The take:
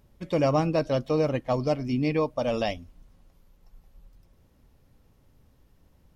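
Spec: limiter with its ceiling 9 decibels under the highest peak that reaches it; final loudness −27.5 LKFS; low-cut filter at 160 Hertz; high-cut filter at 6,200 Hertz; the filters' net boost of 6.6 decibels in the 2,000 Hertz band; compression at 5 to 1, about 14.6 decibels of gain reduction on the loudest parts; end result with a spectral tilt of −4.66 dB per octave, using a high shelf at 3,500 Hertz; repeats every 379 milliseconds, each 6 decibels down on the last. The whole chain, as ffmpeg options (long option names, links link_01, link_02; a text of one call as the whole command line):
ffmpeg -i in.wav -af "highpass=160,lowpass=6200,equalizer=frequency=2000:width_type=o:gain=5.5,highshelf=frequency=3500:gain=8.5,acompressor=threshold=-36dB:ratio=5,alimiter=level_in=8dB:limit=-24dB:level=0:latency=1,volume=-8dB,aecho=1:1:379|758|1137|1516|1895|2274:0.501|0.251|0.125|0.0626|0.0313|0.0157,volume=14.5dB" out.wav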